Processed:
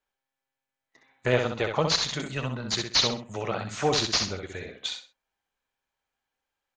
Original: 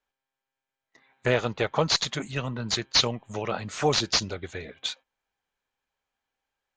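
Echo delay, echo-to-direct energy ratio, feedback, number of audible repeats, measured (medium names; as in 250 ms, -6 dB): 64 ms, -5.0 dB, 26%, 3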